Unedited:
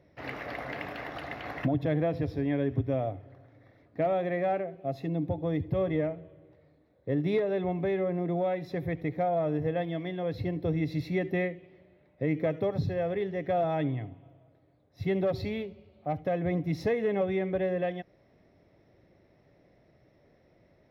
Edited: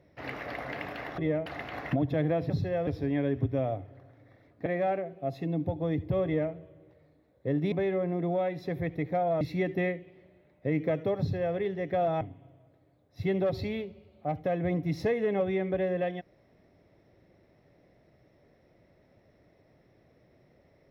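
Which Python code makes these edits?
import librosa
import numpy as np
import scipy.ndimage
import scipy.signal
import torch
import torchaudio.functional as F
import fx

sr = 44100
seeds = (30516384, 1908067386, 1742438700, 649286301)

y = fx.edit(x, sr, fx.cut(start_s=4.01, length_s=0.27),
    fx.duplicate(start_s=5.87, length_s=0.28, to_s=1.18),
    fx.cut(start_s=7.34, length_s=0.44),
    fx.cut(start_s=9.47, length_s=1.5),
    fx.duplicate(start_s=12.75, length_s=0.37, to_s=2.22),
    fx.cut(start_s=13.77, length_s=0.25), tone=tone)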